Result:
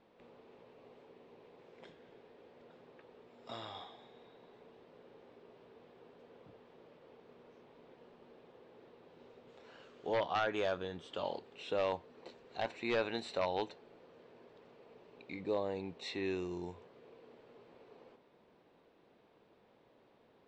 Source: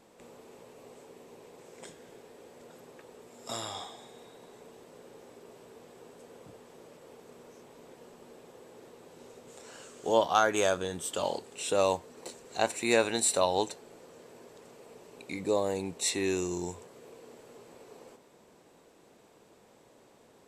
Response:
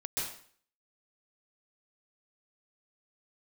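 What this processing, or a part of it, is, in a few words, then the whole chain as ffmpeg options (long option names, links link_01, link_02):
synthesiser wavefolder: -af "aeval=exprs='0.133*(abs(mod(val(0)/0.133+3,4)-2)-1)':channel_layout=same,lowpass=frequency=4000:width=0.5412,lowpass=frequency=4000:width=1.3066,volume=-7dB"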